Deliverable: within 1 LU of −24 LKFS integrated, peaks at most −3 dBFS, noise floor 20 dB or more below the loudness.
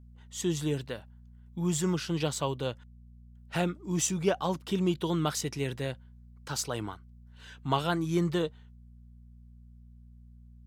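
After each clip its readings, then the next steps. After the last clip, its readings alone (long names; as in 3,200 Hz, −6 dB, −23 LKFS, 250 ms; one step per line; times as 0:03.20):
mains hum 60 Hz; hum harmonics up to 240 Hz; level of the hum −50 dBFS; integrated loudness −31.5 LKFS; sample peak −12.0 dBFS; target loudness −24.0 LKFS
→ hum removal 60 Hz, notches 4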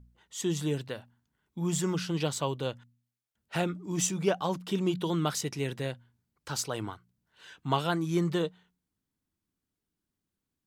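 mains hum none found; integrated loudness −31.5 LKFS; sample peak −11.5 dBFS; target loudness −24.0 LKFS
→ level +7.5 dB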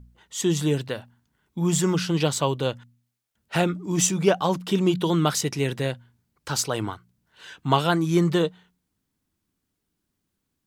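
integrated loudness −24.0 LKFS; sample peak −4.0 dBFS; background noise floor −79 dBFS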